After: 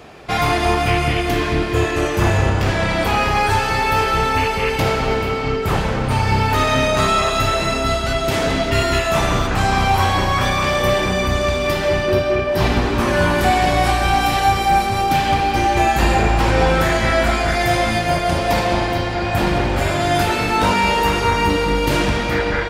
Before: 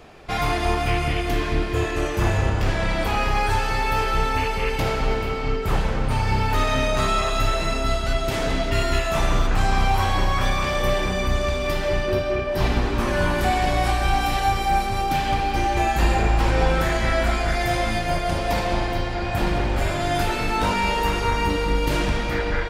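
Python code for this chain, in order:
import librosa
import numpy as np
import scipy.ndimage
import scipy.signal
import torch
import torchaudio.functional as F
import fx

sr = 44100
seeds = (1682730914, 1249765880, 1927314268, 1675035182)

y = scipy.signal.sosfilt(scipy.signal.butter(2, 65.0, 'highpass', fs=sr, output='sos'), x)
y = y * 10.0 ** (6.0 / 20.0)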